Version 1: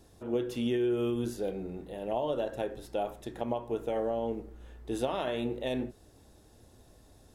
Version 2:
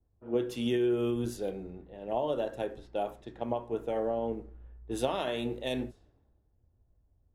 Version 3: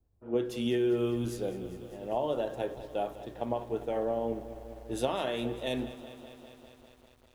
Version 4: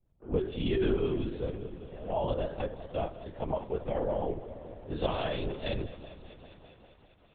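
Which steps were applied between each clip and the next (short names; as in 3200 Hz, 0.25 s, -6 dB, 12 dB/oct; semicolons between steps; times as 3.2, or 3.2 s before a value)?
low-pass opened by the level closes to 1100 Hz, open at -30.5 dBFS; three-band expander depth 70%
lo-fi delay 0.2 s, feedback 80%, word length 9-bit, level -15 dB
LPC vocoder at 8 kHz whisper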